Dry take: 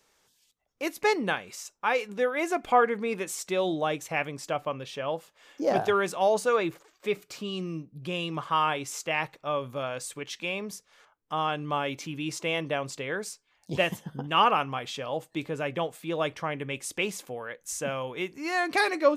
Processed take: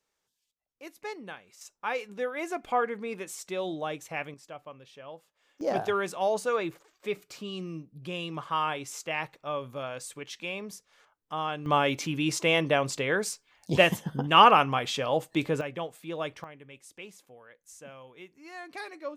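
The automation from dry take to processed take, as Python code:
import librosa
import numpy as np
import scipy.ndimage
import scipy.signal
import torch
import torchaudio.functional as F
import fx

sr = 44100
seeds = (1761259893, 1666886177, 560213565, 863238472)

y = fx.gain(x, sr, db=fx.steps((0.0, -14.0), (1.61, -5.5), (4.34, -13.5), (5.61, -3.5), (11.66, 5.0), (15.61, -5.0), (16.44, -15.5)))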